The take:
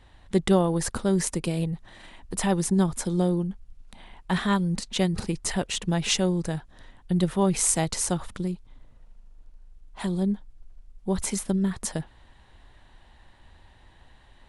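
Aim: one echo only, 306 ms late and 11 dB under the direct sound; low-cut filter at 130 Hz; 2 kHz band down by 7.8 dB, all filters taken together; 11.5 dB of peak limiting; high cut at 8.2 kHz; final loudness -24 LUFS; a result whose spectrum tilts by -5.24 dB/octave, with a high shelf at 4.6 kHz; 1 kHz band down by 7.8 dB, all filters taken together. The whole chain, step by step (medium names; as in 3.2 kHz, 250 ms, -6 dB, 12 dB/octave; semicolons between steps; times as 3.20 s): high-pass 130 Hz; low-pass 8.2 kHz; peaking EQ 1 kHz -9 dB; peaking EQ 2 kHz -6.5 dB; treble shelf 4.6 kHz -3.5 dB; peak limiter -23 dBFS; delay 306 ms -11 dB; trim +9 dB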